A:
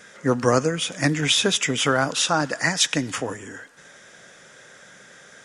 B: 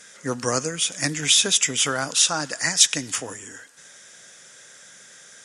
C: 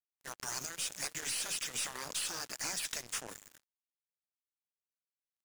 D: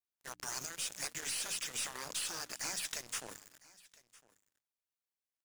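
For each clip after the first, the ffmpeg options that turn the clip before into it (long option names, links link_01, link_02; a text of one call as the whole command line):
ffmpeg -i in.wav -af "equalizer=frequency=9200:width_type=o:width=2.6:gain=15,volume=-7dB" out.wav
ffmpeg -i in.wav -af "afftfilt=real='re*lt(hypot(re,im),0.141)':imag='im*lt(hypot(re,im),0.141)':win_size=1024:overlap=0.75,acrusher=bits=4:mix=0:aa=0.5,aeval=exprs='(tanh(5.01*val(0)+0.35)-tanh(0.35))/5.01':channel_layout=same,volume=-8dB" out.wav
ffmpeg -i in.wav -af "bandreject=frequency=60:width_type=h:width=6,bandreject=frequency=120:width_type=h:width=6,bandreject=frequency=180:width_type=h:width=6,bandreject=frequency=240:width_type=h:width=6,bandreject=frequency=300:width_type=h:width=6,aecho=1:1:1006:0.075,volume=-1.5dB" out.wav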